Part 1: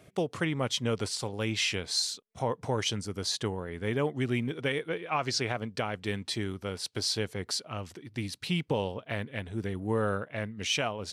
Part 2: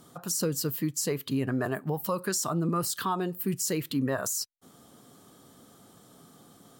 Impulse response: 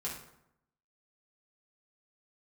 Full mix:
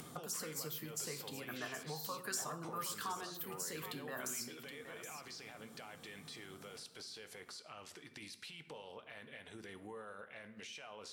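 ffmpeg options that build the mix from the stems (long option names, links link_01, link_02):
-filter_complex "[0:a]highpass=frequency=1100:poles=1,acompressor=threshold=-34dB:ratio=6,alimiter=level_in=14.5dB:limit=-24dB:level=0:latency=1:release=13,volume=-14.5dB,volume=-6dB,asplit=3[link_01][link_02][link_03];[link_02]volume=-7dB[link_04];[1:a]acrossover=split=350|870[link_05][link_06][link_07];[link_05]acompressor=threshold=-49dB:ratio=4[link_08];[link_06]acompressor=threshold=-44dB:ratio=4[link_09];[link_07]acompressor=threshold=-31dB:ratio=4[link_10];[link_08][link_09][link_10]amix=inputs=3:normalize=0,volume=-4dB,asplit=3[link_11][link_12][link_13];[link_12]volume=-10.5dB[link_14];[link_13]volume=-15dB[link_15];[link_03]apad=whole_len=299723[link_16];[link_11][link_16]sidechaincompress=threshold=-57dB:ratio=8:attack=16:release=666[link_17];[2:a]atrim=start_sample=2205[link_18];[link_04][link_14]amix=inputs=2:normalize=0[link_19];[link_19][link_18]afir=irnorm=-1:irlink=0[link_20];[link_15]aecho=0:1:772:1[link_21];[link_01][link_17][link_20][link_21]amix=inputs=4:normalize=0,acompressor=mode=upward:threshold=-46dB:ratio=2.5"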